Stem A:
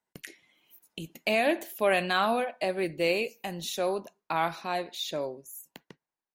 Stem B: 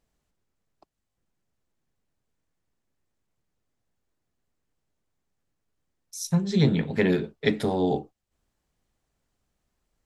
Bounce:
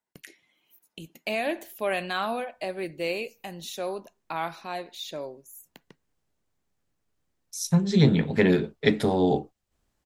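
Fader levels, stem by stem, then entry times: −3.0, +2.0 decibels; 0.00, 1.40 seconds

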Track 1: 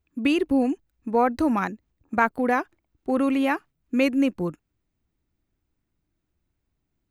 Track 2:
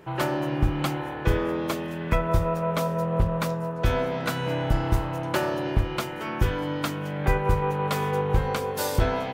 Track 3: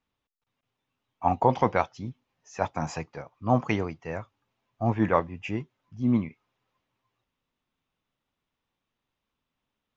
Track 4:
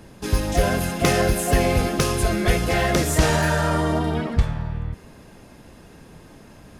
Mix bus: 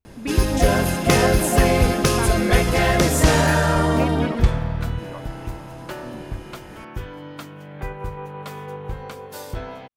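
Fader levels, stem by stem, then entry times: −7.5, −8.0, −17.0, +2.5 decibels; 0.00, 0.55, 0.00, 0.05 seconds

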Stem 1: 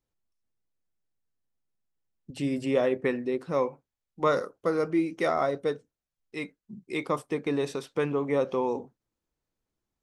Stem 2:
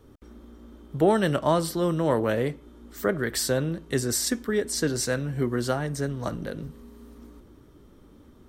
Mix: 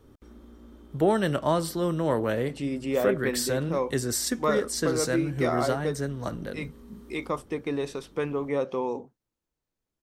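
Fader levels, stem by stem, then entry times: −1.5, −2.0 decibels; 0.20, 0.00 seconds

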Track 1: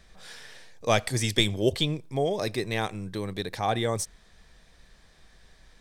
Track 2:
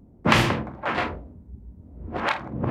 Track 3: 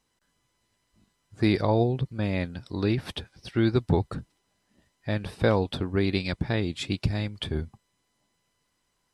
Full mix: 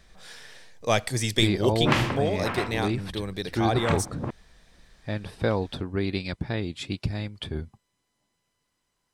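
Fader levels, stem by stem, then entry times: 0.0, −5.5, −2.5 decibels; 0.00, 1.60, 0.00 seconds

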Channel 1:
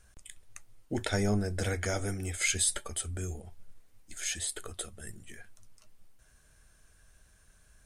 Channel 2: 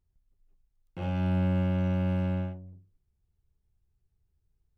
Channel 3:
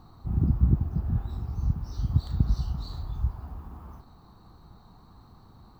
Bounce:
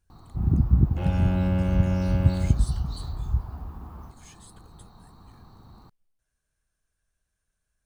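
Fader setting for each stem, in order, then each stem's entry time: −18.0, +2.5, +2.5 decibels; 0.00, 0.00, 0.10 seconds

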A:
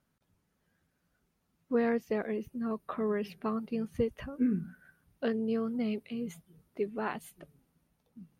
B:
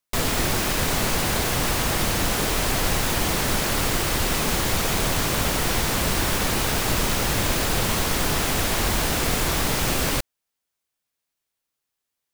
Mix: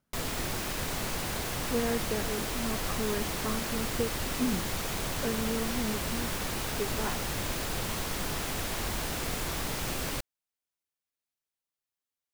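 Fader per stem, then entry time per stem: −2.0, −10.5 decibels; 0.00, 0.00 seconds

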